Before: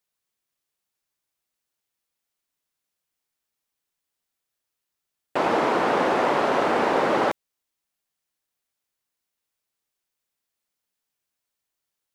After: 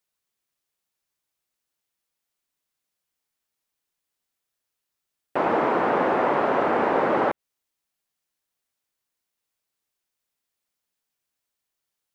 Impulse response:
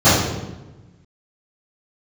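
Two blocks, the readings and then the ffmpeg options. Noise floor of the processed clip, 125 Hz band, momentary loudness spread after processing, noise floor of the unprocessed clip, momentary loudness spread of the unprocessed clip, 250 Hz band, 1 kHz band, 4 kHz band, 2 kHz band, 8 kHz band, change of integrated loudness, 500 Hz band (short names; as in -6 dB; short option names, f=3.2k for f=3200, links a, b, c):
-83 dBFS, 0.0 dB, 5 LU, -84 dBFS, 5 LU, 0.0 dB, 0.0 dB, -8.0 dB, -1.5 dB, under -10 dB, -0.5 dB, 0.0 dB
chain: -filter_complex "[0:a]acrossover=split=2500[a][b];[b]acompressor=threshold=-54dB:ratio=4:attack=1:release=60[c];[a][c]amix=inputs=2:normalize=0"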